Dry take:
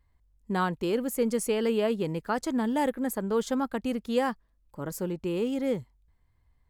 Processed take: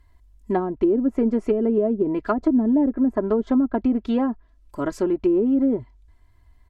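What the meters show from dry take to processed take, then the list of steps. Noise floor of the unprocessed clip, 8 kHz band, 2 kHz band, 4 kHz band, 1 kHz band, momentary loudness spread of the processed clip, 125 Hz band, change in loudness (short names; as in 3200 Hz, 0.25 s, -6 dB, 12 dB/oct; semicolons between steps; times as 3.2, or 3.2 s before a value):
-68 dBFS, under -10 dB, -3.5 dB, n/a, +1.0 dB, 8 LU, +1.0 dB, +7.5 dB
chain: comb 3 ms, depth 77%; treble ducked by the level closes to 390 Hz, closed at -22.5 dBFS; gain +8.5 dB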